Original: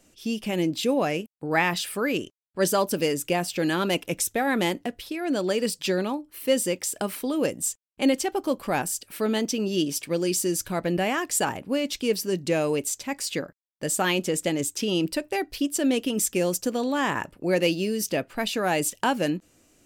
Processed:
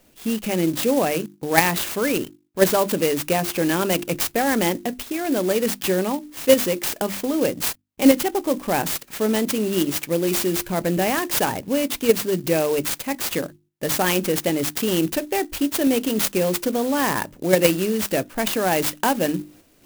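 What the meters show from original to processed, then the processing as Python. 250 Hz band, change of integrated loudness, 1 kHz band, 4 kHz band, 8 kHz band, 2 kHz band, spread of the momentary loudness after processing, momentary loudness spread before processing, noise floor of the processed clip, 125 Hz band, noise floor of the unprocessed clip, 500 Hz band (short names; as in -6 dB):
+4.0 dB, +4.5 dB, +4.0 dB, +3.0 dB, +2.0 dB, +3.0 dB, 7 LU, 6 LU, -57 dBFS, +4.0 dB, -63 dBFS, +5.0 dB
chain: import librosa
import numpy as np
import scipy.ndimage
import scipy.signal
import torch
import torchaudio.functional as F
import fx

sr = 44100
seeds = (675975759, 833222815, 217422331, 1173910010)

p1 = fx.peak_eq(x, sr, hz=1300.0, db=-4.0, octaves=0.36)
p2 = fx.hum_notches(p1, sr, base_hz=50, count=7)
p3 = fx.level_steps(p2, sr, step_db=20)
p4 = p2 + F.gain(torch.from_numpy(p3), 0.5).numpy()
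p5 = fx.clock_jitter(p4, sr, seeds[0], jitter_ms=0.056)
y = F.gain(torch.from_numpy(p5), 3.0).numpy()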